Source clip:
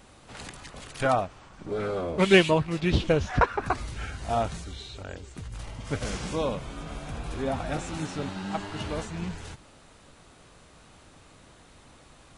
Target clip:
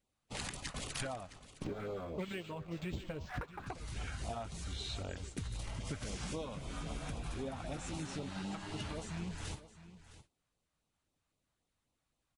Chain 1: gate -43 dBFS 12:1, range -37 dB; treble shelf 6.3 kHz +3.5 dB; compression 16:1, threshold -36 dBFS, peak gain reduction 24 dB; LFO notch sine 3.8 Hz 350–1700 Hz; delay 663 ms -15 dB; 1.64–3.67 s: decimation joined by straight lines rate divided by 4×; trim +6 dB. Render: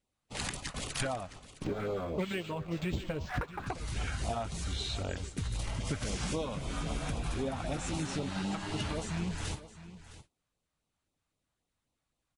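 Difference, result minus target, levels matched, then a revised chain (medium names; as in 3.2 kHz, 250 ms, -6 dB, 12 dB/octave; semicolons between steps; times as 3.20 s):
compression: peak gain reduction -6.5 dB
gate -43 dBFS 12:1, range -37 dB; treble shelf 6.3 kHz +3.5 dB; compression 16:1, threshold -43 dBFS, peak gain reduction 31 dB; LFO notch sine 3.8 Hz 350–1700 Hz; delay 663 ms -15 dB; 1.64–3.67 s: decimation joined by straight lines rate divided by 4×; trim +6 dB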